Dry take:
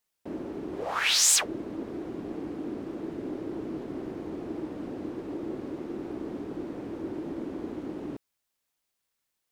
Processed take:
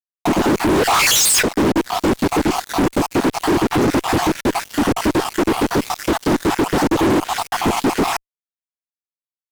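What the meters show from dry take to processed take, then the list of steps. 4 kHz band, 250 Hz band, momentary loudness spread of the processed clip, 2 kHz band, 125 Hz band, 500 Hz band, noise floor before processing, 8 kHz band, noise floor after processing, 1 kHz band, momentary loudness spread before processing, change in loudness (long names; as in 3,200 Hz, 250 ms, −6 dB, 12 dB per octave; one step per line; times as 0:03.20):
+10.0 dB, +16.5 dB, 7 LU, +14.5 dB, +20.0 dB, +17.0 dB, −82 dBFS, +8.0 dB, below −85 dBFS, +22.0 dB, 14 LU, +13.5 dB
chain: time-frequency cells dropped at random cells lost 58%
downward compressor 2.5 to 1, threshold −38 dBFS, peak gain reduction 11.5 dB
bass and treble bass +4 dB, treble +9 dB
fuzz pedal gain 52 dB, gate −58 dBFS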